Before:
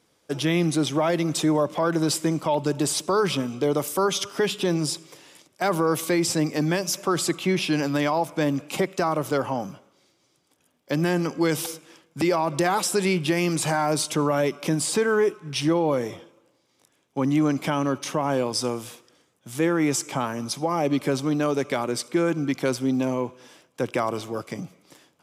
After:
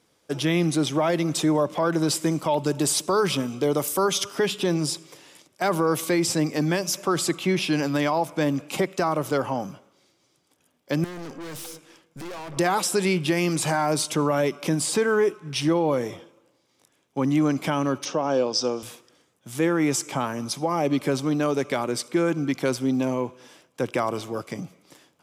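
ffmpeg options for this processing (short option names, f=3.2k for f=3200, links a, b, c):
-filter_complex "[0:a]asettb=1/sr,asplit=3[a][b][c];[a]atrim=end=2.214[d];[b]atrim=start=2.21:end=4.35,asetpts=PTS-STARTPTS,afade=t=in:d=0.004:c=qsin,afade=t=out:st=2.136:d=0.004:c=qsin,highshelf=f=6.9k:g=5[e];[c]atrim=start=4.346[f];[d][e]acrossfade=d=0.004:c1=hsin:c2=qsin[g];[g][f]acrossfade=d=0.004:c1=qsin:c2=hsin,asettb=1/sr,asplit=3[h][i][j];[h]atrim=end=11.044[k];[i]atrim=start=11.04:end=12.57,asetpts=PTS-STARTPTS,afade=t=in:d=0.004:c=qsin,afade=t=out:st=1.526:d=0.004:c=qsin,aeval=exprs='(tanh(56.2*val(0)+0.45)-tanh(0.45))/56.2':c=same[l];[j]atrim=start=12.566[m];[k][l]acrossfade=d=0.004:c1=hsin:c2=qsin[n];[n][m]acrossfade=d=0.004:c1=qsin:c2=hsin,asettb=1/sr,asplit=3[o][p][q];[o]atrim=end=18.054[r];[p]atrim=start=18.05:end=18.83,asetpts=PTS-STARTPTS,afade=t=in:d=0.004:c=qsin,afade=t=out:st=0.776:d=0.004:c=qsin,highpass=190,equalizer=f=510:t=q:w=4:g=4,equalizer=f=1k:t=q:w=4:g=-3,equalizer=f=2k:t=q:w=4:g=-9,equalizer=f=5.6k:t=q:w=4:g=7,lowpass=f=6.2k:w=0.5412,lowpass=f=6.2k:w=1.3066[s];[q]atrim=start=18.826[t];[r][s]acrossfade=d=0.004:c1=hsin:c2=qsin[u];[u][t]acrossfade=d=0.004:c1=qsin:c2=hsin"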